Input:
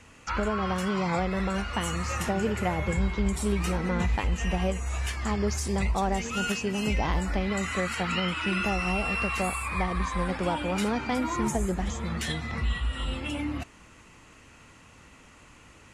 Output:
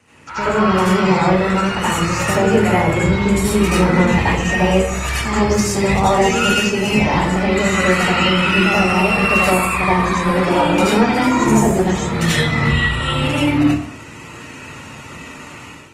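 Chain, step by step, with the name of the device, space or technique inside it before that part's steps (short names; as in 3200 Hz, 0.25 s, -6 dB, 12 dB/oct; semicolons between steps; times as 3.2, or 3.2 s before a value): far-field microphone of a smart speaker (reverb RT60 0.55 s, pre-delay 73 ms, DRR -8 dB; HPF 94 Hz 24 dB/oct; AGC; gain -1 dB; Opus 24 kbps 48000 Hz)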